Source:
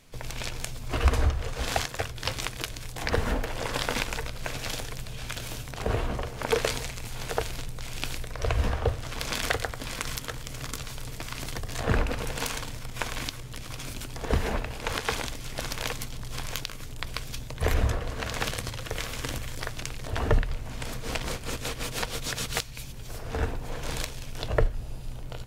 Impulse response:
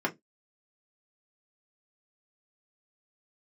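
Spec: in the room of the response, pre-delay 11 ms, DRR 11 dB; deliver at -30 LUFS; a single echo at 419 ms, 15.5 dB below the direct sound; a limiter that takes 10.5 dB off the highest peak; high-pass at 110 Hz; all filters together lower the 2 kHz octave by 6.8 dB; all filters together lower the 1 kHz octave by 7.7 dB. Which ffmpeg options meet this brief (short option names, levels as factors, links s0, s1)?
-filter_complex "[0:a]highpass=110,equalizer=f=1000:t=o:g=-9,equalizer=f=2000:t=o:g=-6,alimiter=limit=0.0944:level=0:latency=1,aecho=1:1:419:0.168,asplit=2[s0][s1];[1:a]atrim=start_sample=2205,adelay=11[s2];[s1][s2]afir=irnorm=-1:irlink=0,volume=0.1[s3];[s0][s3]amix=inputs=2:normalize=0,volume=2.24"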